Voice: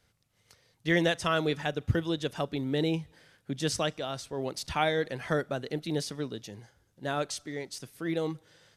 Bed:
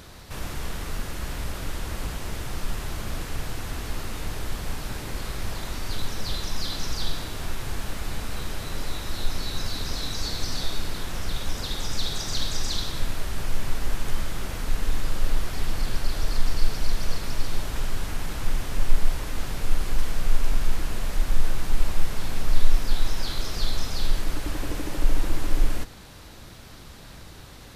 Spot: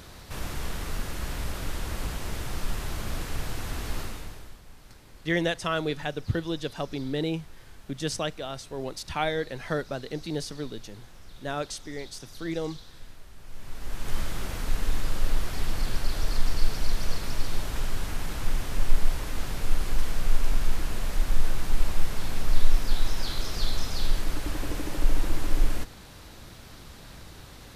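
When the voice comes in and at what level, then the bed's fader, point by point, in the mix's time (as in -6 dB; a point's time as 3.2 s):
4.40 s, -0.5 dB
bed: 4.01 s -1 dB
4.62 s -19 dB
13.4 s -19 dB
14.17 s -1.5 dB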